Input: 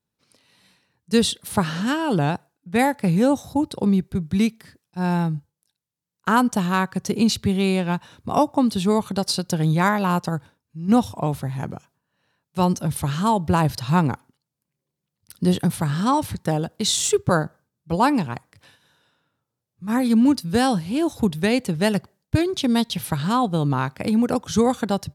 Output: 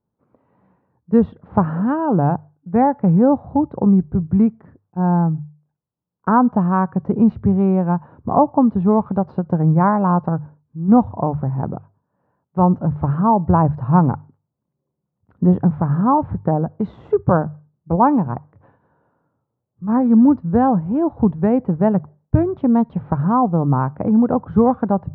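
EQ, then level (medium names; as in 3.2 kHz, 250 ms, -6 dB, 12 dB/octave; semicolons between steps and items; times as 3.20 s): low-pass 1.1 kHz 24 dB/octave; hum notches 50/100/150 Hz; dynamic bell 390 Hz, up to -4 dB, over -31 dBFS, Q 1.2; +6.5 dB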